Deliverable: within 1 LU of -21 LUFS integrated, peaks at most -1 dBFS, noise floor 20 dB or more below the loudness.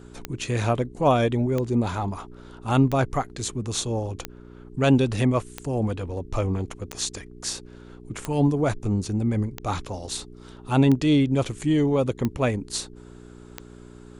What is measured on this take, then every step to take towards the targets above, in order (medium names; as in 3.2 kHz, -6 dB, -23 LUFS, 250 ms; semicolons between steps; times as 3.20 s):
clicks found 11; hum 60 Hz; highest harmonic 420 Hz; hum level -43 dBFS; loudness -24.5 LUFS; peak level -7.5 dBFS; loudness target -21.0 LUFS
-> de-click; de-hum 60 Hz, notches 7; trim +3.5 dB